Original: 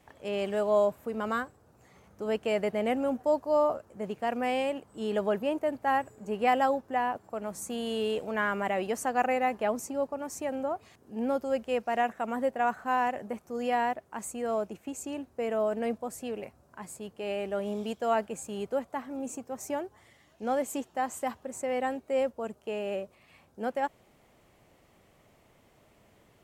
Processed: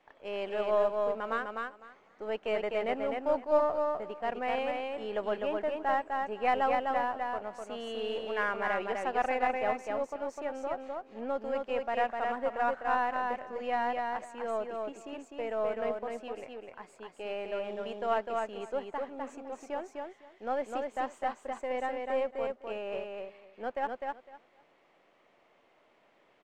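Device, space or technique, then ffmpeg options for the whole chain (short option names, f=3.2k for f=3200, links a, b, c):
crystal radio: -af "highpass=310,lowpass=3.2k,lowshelf=f=460:g=-5,aecho=1:1:253|506|759:0.668|0.114|0.0193,aeval=exprs='if(lt(val(0),0),0.708*val(0),val(0))':c=same"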